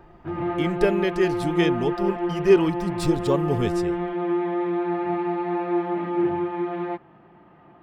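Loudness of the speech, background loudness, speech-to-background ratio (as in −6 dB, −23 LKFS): −24.0 LKFS, −26.5 LKFS, 2.5 dB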